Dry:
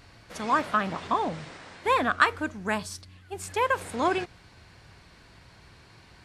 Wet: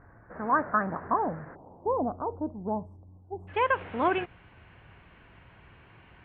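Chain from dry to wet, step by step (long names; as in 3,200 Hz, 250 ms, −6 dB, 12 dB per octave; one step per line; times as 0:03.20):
elliptic low-pass filter 1,700 Hz, stop band 50 dB, from 0:01.54 900 Hz, from 0:03.47 3,000 Hz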